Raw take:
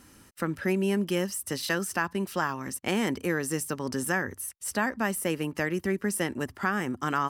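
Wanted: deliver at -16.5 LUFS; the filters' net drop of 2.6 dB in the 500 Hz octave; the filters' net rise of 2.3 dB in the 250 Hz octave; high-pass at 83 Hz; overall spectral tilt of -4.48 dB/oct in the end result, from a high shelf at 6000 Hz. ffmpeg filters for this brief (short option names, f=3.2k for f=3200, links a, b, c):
-af "highpass=83,equalizer=f=250:t=o:g=5,equalizer=f=500:t=o:g=-6,highshelf=f=6k:g=3.5,volume=12dB"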